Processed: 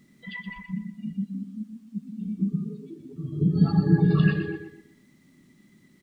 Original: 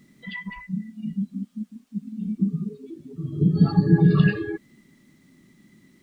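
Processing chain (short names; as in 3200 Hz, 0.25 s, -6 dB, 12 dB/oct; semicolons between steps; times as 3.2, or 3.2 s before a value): feedback echo 0.122 s, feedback 33%, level -8.5 dB; gain -3 dB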